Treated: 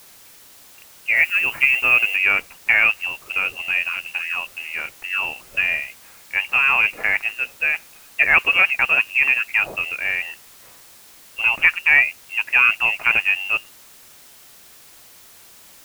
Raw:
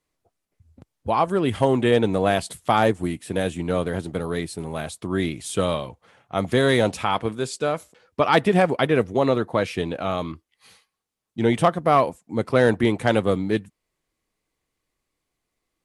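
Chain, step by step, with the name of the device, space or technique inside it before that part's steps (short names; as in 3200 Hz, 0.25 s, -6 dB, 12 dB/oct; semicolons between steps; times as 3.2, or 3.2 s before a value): scrambled radio voice (BPF 310–3200 Hz; inverted band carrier 3000 Hz; white noise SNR 25 dB); 1.16–2.16 high shelf 9500 Hz +8.5 dB; gain +3.5 dB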